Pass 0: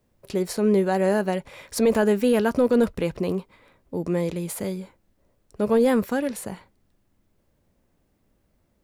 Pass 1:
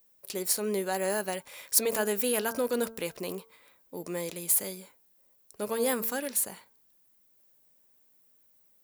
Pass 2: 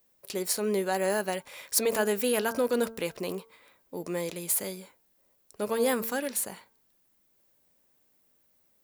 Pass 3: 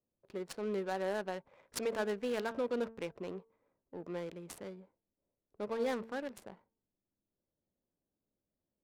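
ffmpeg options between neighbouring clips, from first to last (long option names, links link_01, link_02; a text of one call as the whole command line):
ffmpeg -i in.wav -af "aemphasis=mode=production:type=riaa,bandreject=frequency=225.9:width_type=h:width=4,bandreject=frequency=451.8:width_type=h:width=4,bandreject=frequency=677.7:width_type=h:width=4,bandreject=frequency=903.6:width_type=h:width=4,bandreject=frequency=1129.5:width_type=h:width=4,bandreject=frequency=1355.4:width_type=h:width=4,bandreject=frequency=1581.3:width_type=h:width=4,volume=-6dB" out.wav
ffmpeg -i in.wav -af "highshelf=frequency=7200:gain=-7,volume=2.5dB" out.wav
ffmpeg -i in.wav -af "adynamicsmooth=sensitivity=4.5:basefreq=580,volume=-8dB" out.wav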